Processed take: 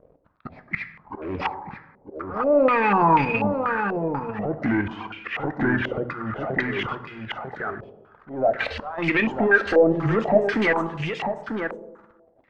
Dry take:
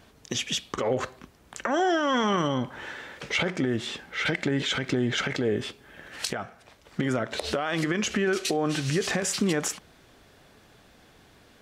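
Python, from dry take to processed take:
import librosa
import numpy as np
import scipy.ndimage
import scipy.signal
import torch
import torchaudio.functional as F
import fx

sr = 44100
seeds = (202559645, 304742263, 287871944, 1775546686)

y = fx.speed_glide(x, sr, from_pct=68, to_pct=118)
y = fx.dereverb_blind(y, sr, rt60_s=1.7)
y = fx.hum_notches(y, sr, base_hz=60, count=4)
y = fx.level_steps(y, sr, step_db=10)
y = fx.leveller(y, sr, passes=3)
y = fx.auto_swell(y, sr, attack_ms=323.0)
y = y + 10.0 ** (-6.0 / 20.0) * np.pad(y, (int(945 * sr / 1000.0), 0))[:len(y)]
y = fx.rev_plate(y, sr, seeds[0], rt60_s=1.2, hf_ratio=0.55, predelay_ms=0, drr_db=9.5)
y = fx.filter_held_lowpass(y, sr, hz=4.1, low_hz=540.0, high_hz=2500.0)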